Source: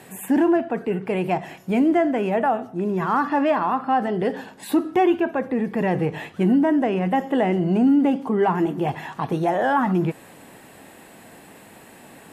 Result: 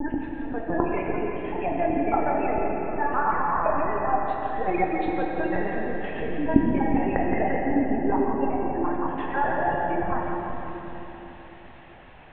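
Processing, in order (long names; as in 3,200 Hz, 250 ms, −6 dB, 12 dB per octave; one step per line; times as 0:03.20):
slices reordered back to front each 85 ms, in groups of 5
low-shelf EQ 420 Hz −9.5 dB
gate on every frequency bin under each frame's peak −20 dB strong
linear-prediction vocoder at 8 kHz pitch kept
echo with a time of its own for lows and highs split 590 Hz, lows 381 ms, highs 172 ms, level −8 dB
dense smooth reverb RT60 3.6 s, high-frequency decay 0.9×, DRR −0.5 dB
level −3.5 dB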